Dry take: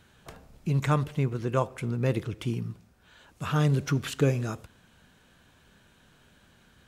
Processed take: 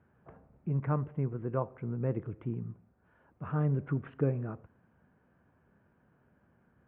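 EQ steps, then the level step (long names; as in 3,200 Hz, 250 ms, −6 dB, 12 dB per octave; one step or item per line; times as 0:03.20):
Gaussian smoothing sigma 5.3 samples
high-pass filter 74 Hz
high-frequency loss of the air 67 metres
−5.0 dB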